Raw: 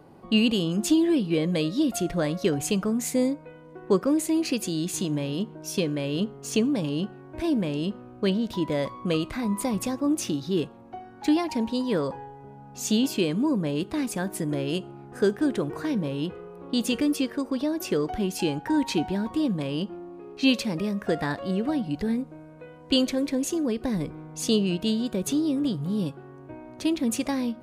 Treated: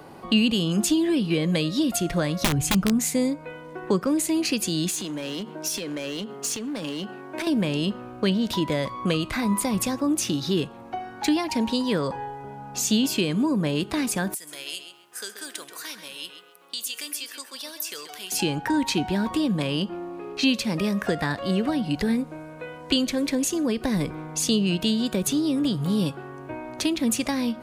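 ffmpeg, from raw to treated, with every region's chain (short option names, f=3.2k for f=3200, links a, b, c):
-filter_complex "[0:a]asettb=1/sr,asplit=3[a][b][c];[a]atrim=end=2.414[d];[b]atrim=start=2.41:end=2.99,asetpts=PTS-STARTPTS,afade=t=in:d=0.004:c=qsin,afade=t=out:st=0.576:d=0.004:c=qsin,lowshelf=f=150:g=10.5,aeval=exprs='(mod(5.62*val(0)+1,2)-1)/5.62':c=same[e];[c]atrim=start=2.986[f];[d][e]acrossfade=d=0.004:c1=hsin:c2=qsin[g];[g][f]acrossfade=d=0.004:c1=qsin:c2=hsin,asettb=1/sr,asplit=3[h][i][j];[h]atrim=end=4.904[k];[i]atrim=start=4.9:end=7.47,asetpts=PTS-STARTPTS,afade=t=in:d=0.004:c=qsin,afade=t=out:st=2.566:d=0.004:c=qsin,highpass=f=170:w=0.5412,highpass=f=170:w=1.3066,acompressor=threshold=-32dB:ratio=16:attack=3.2:release=140:knee=1:detection=peak,asoftclip=type=hard:threshold=-31.5dB[l];[j]atrim=start=7.466[m];[k][l]acrossfade=d=0.004:c1=hsin:c2=qsin[n];[n][m]acrossfade=d=0.004:c1=qsin:c2=hsin,asettb=1/sr,asplit=3[o][p][q];[o]atrim=end=14.344[r];[p]atrim=start=14.34:end=18.32,asetpts=PTS-STARTPTS,afade=t=in:d=0.004:c=qsin,afade=t=out:st=3.976:d=0.004:c=qsin,aderivative,acompressor=threshold=-41dB:ratio=3:attack=3.2:release=140:knee=1:detection=peak,asplit=2[s][t];[t]adelay=132,lowpass=f=3.9k:p=1,volume=-8dB,asplit=2[u][v];[v]adelay=132,lowpass=f=3.9k:p=1,volume=0.27,asplit=2[w][x];[x]adelay=132,lowpass=f=3.9k:p=1,volume=0.27[y];[s][u][w][y]amix=inputs=4:normalize=0,atrim=end_sample=175518[z];[q]atrim=start=18.316[aa];[r][z]acrossfade=d=0.004:c1=hsin:c2=qsin[ab];[ab][aa]acrossfade=d=0.004:c1=qsin:c2=hsin,tiltshelf=f=670:g=-5,acrossover=split=230[ac][ad];[ad]acompressor=threshold=-35dB:ratio=3[ae];[ac][ae]amix=inputs=2:normalize=0,volume=8.5dB"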